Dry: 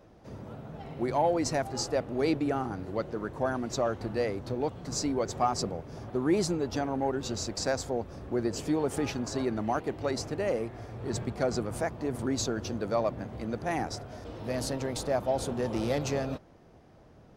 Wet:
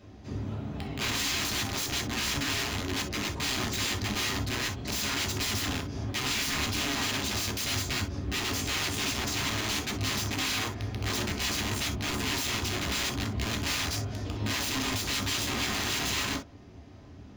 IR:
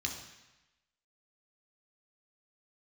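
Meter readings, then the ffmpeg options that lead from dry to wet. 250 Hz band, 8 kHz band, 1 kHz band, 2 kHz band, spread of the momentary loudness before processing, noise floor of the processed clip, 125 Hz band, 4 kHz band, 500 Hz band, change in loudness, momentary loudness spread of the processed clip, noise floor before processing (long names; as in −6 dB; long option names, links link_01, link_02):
−3.0 dB, +7.5 dB, −2.5 dB, +9.5 dB, 9 LU, −48 dBFS, +2.5 dB, +12.0 dB, −10.0 dB, +2.0 dB, 4 LU, −56 dBFS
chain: -filter_complex "[0:a]aeval=exprs='(mod(37.6*val(0)+1,2)-1)/37.6':channel_layout=same[link_01];[1:a]atrim=start_sample=2205,atrim=end_sample=3087[link_02];[link_01][link_02]afir=irnorm=-1:irlink=0,volume=4dB"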